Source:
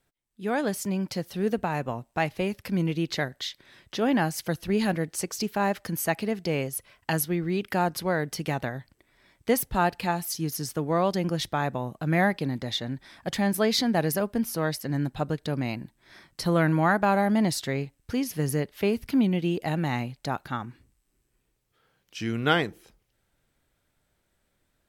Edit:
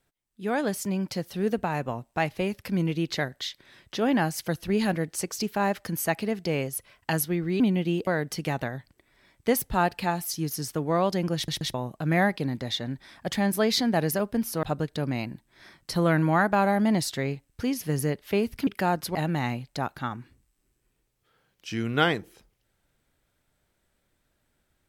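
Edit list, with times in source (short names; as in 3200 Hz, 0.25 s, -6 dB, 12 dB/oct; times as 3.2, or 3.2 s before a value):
7.6–8.08 swap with 19.17–19.64
11.36 stutter in place 0.13 s, 3 plays
14.64–15.13 cut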